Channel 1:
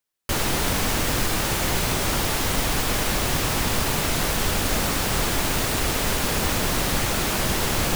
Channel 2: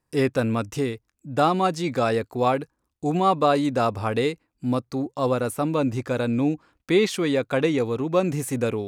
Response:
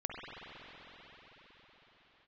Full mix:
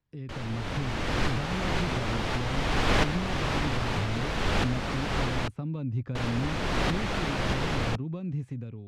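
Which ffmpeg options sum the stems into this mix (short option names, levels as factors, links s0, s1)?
-filter_complex "[0:a]volume=0.708,asplit=3[s0][s1][s2];[s0]atrim=end=5.48,asetpts=PTS-STARTPTS,afade=t=out:st=5.476:d=0.004:c=hsin[s3];[s1]atrim=start=5.48:end=6.15,asetpts=PTS-STARTPTS,volume=0[s4];[s2]atrim=start=6.15,asetpts=PTS-STARTPTS,afade=t=in:d=0.004:c=hsin[s5];[s3][s4][s5]concat=n=3:v=0:a=1[s6];[1:a]acompressor=threshold=0.0282:ratio=2,bass=f=250:g=11,treble=f=4000:g=-7,acrossover=split=230|3000[s7][s8][s9];[s8]acompressor=threshold=0.0126:ratio=4[s10];[s7][s10][s9]amix=inputs=3:normalize=0,volume=0.237,asplit=2[s11][s12];[s12]apad=whole_len=350758[s13];[s6][s13]sidechaincompress=threshold=0.00501:ratio=8:attack=7.8:release=771[s14];[s14][s11]amix=inputs=2:normalize=0,lowpass=3500,dynaudnorm=f=140:g=9:m=2.37"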